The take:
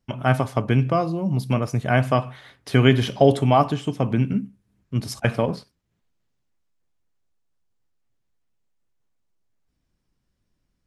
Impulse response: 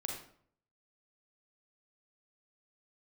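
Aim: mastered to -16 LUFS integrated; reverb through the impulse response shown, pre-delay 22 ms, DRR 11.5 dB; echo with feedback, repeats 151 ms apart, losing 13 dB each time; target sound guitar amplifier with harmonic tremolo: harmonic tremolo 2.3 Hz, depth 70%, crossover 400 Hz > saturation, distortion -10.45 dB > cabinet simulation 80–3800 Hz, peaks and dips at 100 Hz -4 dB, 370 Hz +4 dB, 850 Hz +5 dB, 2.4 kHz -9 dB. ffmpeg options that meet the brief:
-filter_complex "[0:a]aecho=1:1:151|302|453:0.224|0.0493|0.0108,asplit=2[s0][s1];[1:a]atrim=start_sample=2205,adelay=22[s2];[s1][s2]afir=irnorm=-1:irlink=0,volume=0.251[s3];[s0][s3]amix=inputs=2:normalize=0,acrossover=split=400[s4][s5];[s4]aeval=exprs='val(0)*(1-0.7/2+0.7/2*cos(2*PI*2.3*n/s))':c=same[s6];[s5]aeval=exprs='val(0)*(1-0.7/2-0.7/2*cos(2*PI*2.3*n/s))':c=same[s7];[s6][s7]amix=inputs=2:normalize=0,asoftclip=threshold=0.133,highpass=80,equalizer=f=100:t=q:w=4:g=-4,equalizer=f=370:t=q:w=4:g=4,equalizer=f=850:t=q:w=4:g=5,equalizer=f=2400:t=q:w=4:g=-9,lowpass=f=3800:w=0.5412,lowpass=f=3800:w=1.3066,volume=3.55"

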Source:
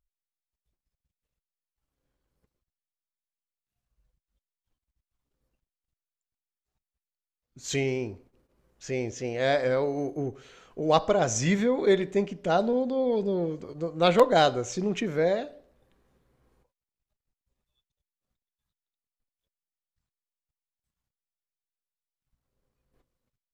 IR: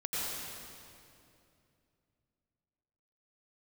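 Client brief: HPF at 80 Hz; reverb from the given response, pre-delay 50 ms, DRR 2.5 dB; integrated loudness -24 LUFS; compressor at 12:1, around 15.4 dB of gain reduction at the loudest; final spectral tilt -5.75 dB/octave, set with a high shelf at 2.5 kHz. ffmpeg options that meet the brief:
-filter_complex "[0:a]highpass=80,highshelf=f=2500:g=-6,acompressor=threshold=0.0355:ratio=12,asplit=2[s0][s1];[1:a]atrim=start_sample=2205,adelay=50[s2];[s1][s2]afir=irnorm=-1:irlink=0,volume=0.398[s3];[s0][s3]amix=inputs=2:normalize=0,volume=2.82"

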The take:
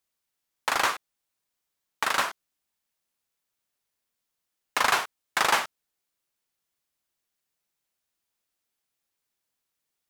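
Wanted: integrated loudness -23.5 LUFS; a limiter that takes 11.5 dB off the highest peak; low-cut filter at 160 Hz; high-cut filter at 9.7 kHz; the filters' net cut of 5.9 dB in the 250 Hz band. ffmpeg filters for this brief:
-af "highpass=160,lowpass=9700,equalizer=f=250:t=o:g=-7.5,volume=2.99,alimiter=limit=0.316:level=0:latency=1"

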